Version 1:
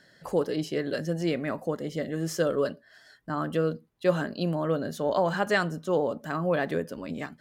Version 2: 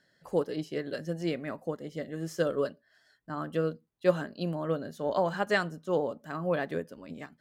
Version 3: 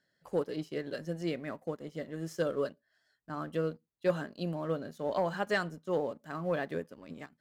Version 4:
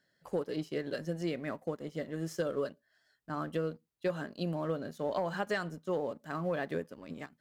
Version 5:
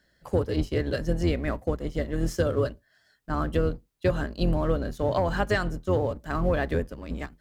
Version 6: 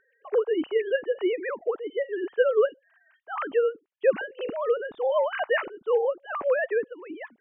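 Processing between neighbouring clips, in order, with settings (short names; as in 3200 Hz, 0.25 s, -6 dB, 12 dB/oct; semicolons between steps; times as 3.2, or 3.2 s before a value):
upward expander 1.5:1, over -39 dBFS
sample leveller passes 1; gain -6.5 dB
compressor 6:1, threshold -31 dBFS, peak gain reduction 8.5 dB; gain +2 dB
octaver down 2 oct, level +3 dB; gain +7.5 dB
sine-wave speech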